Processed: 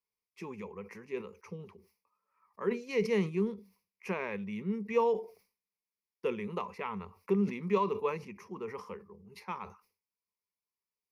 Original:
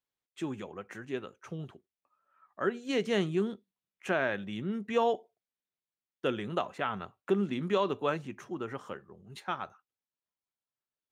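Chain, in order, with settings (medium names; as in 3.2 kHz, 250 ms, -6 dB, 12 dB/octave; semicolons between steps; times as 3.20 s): rippled EQ curve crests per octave 0.85, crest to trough 16 dB; decay stretcher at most 150 dB/s; trim -6 dB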